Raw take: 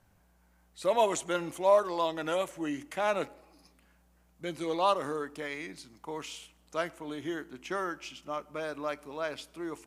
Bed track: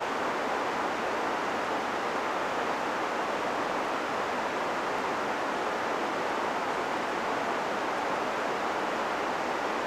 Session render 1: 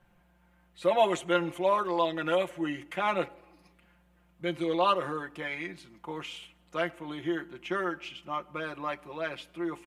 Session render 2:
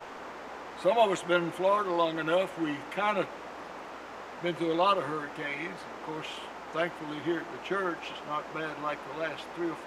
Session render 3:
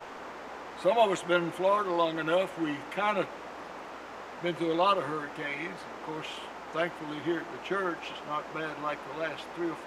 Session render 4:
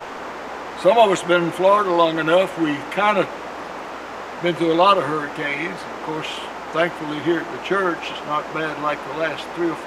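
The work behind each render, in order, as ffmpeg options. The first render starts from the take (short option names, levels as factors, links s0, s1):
-af "highshelf=f=4000:t=q:w=1.5:g=-8,aecho=1:1:5.7:0.81"
-filter_complex "[1:a]volume=0.237[s0];[0:a][s0]amix=inputs=2:normalize=0"
-af anull
-af "volume=3.55,alimiter=limit=0.708:level=0:latency=1"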